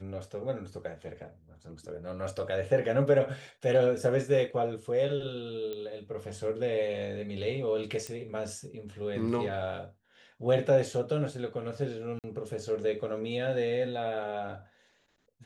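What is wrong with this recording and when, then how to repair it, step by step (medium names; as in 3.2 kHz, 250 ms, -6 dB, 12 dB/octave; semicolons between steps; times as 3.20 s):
5.73 s: pop -25 dBFS
8.07 s: pop -22 dBFS
12.19–12.24 s: dropout 48 ms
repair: de-click; interpolate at 12.19 s, 48 ms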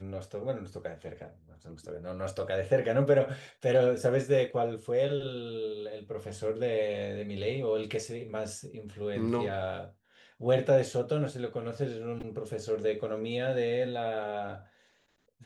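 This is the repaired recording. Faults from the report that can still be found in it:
nothing left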